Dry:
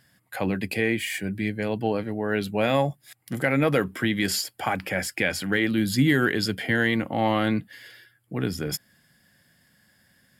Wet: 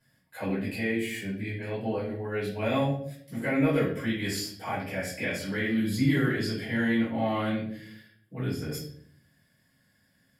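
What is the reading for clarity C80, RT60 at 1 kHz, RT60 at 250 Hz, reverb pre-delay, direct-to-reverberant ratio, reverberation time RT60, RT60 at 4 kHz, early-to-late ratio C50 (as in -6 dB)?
8.5 dB, 0.50 s, 0.85 s, 5 ms, -10.0 dB, 0.60 s, 0.45 s, 4.0 dB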